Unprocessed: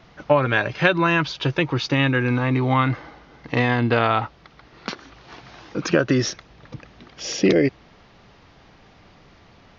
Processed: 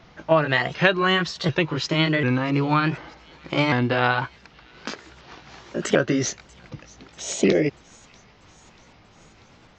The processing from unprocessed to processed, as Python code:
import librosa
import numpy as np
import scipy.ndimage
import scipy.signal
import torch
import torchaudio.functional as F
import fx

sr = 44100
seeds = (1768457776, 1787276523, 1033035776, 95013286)

y = fx.pitch_ramps(x, sr, semitones=3.5, every_ms=744)
y = fx.echo_wet_highpass(y, sr, ms=639, feedback_pct=60, hz=2700.0, wet_db=-22)